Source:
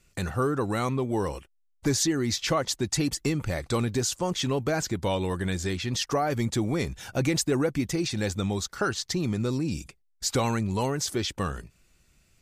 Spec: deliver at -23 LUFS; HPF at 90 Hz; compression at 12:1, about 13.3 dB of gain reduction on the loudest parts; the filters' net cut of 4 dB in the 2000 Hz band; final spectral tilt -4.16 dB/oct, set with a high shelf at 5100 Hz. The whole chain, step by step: HPF 90 Hz; bell 2000 Hz -6 dB; high shelf 5100 Hz +3.5 dB; compressor 12:1, threshold -35 dBFS; gain +16 dB

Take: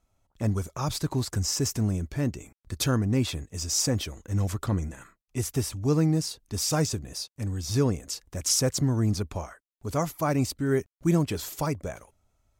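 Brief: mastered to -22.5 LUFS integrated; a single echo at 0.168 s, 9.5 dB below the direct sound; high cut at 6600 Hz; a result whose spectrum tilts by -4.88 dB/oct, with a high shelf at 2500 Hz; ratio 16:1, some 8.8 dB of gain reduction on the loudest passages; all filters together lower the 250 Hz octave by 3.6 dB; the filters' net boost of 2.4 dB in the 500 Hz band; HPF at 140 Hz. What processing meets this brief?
HPF 140 Hz; LPF 6600 Hz; bell 250 Hz -5.5 dB; bell 500 Hz +5 dB; high shelf 2500 Hz -6.5 dB; compressor 16:1, threshold -28 dBFS; echo 0.168 s -9.5 dB; gain +13 dB

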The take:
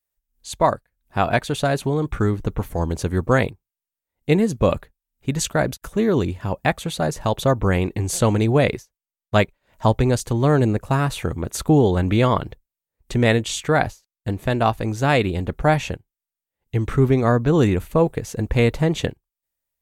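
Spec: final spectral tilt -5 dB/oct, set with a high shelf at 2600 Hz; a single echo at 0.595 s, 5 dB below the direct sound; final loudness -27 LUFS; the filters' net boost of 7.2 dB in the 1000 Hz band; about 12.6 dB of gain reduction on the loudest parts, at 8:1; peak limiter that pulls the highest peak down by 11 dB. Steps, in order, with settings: bell 1000 Hz +9 dB; high shelf 2600 Hz +3.5 dB; compressor 8:1, threshold -20 dBFS; limiter -16 dBFS; echo 0.595 s -5 dB

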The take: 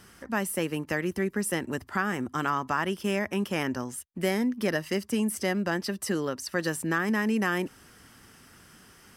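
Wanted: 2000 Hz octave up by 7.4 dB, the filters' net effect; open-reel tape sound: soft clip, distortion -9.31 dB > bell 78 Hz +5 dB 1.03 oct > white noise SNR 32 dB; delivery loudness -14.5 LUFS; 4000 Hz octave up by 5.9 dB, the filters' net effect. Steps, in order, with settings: bell 2000 Hz +8 dB; bell 4000 Hz +5 dB; soft clip -22.5 dBFS; bell 78 Hz +5 dB 1.03 oct; white noise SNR 32 dB; gain +15 dB

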